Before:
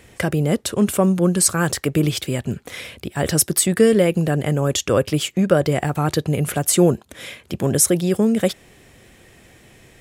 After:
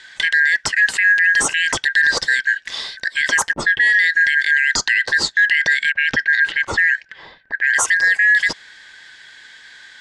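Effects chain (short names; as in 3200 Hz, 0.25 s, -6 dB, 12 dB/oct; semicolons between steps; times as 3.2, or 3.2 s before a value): four-band scrambler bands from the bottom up 4123; 3.53–4 low-pass opened by the level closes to 320 Hz, open at -9.5 dBFS; LPF 7000 Hz 24 dB/oct; 5.92–7.67 low-pass opened by the level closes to 810 Hz, open at -11.5 dBFS; limiter -13 dBFS, peak gain reduction 11 dB; gain +6.5 dB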